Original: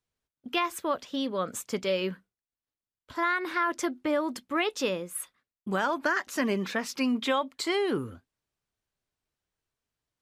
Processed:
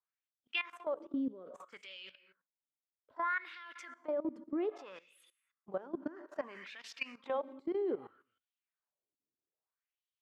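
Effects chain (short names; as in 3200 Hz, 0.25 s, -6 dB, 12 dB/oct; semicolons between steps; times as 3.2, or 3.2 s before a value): non-linear reverb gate 0.28 s flat, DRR 12 dB; wah 0.62 Hz 270–3200 Hz, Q 2.7; level quantiser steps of 17 dB; gain +1 dB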